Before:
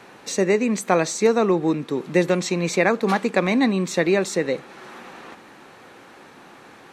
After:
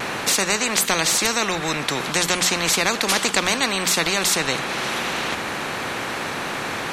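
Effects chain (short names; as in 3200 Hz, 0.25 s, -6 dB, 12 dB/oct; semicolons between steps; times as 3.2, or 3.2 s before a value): notches 60/120/180 Hz; vibrato 0.36 Hz 8.1 cents; spectral compressor 4:1; gain +2 dB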